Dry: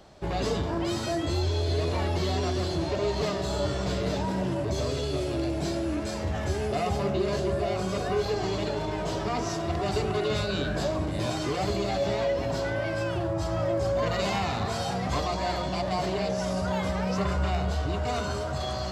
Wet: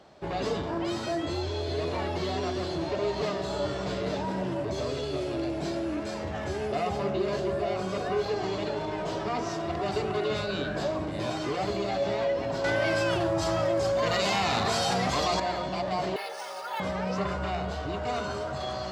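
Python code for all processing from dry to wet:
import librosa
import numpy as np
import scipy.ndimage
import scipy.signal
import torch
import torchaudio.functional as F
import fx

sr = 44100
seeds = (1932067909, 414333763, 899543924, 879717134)

y = fx.chain(x, sr, fx.high_shelf(hz=3300.0, db=11.0),
    fx.env_flatten(amount_pct=100), at=(12.64, 15.4))
y = fx.chain(y, sr, fx.highpass(hz=860.0, slope=12),
    fx.comb(ms=2.3, depth=0.71),
    fx.resample_bad(factor=3, down='filtered', up='hold'), at=(16.16, 16.8))
y = fx.highpass(y, sr, hz=200.0, slope=6)
y = fx.high_shelf(y, sr, hz=6800.0, db=-12.0)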